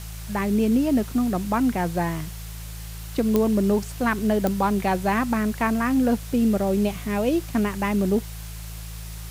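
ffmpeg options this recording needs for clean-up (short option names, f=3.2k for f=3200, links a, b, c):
-af "adeclick=t=4,bandreject=f=54.6:t=h:w=4,bandreject=f=109.2:t=h:w=4,bandreject=f=163.8:t=h:w=4,afftdn=nr=30:nf=-35"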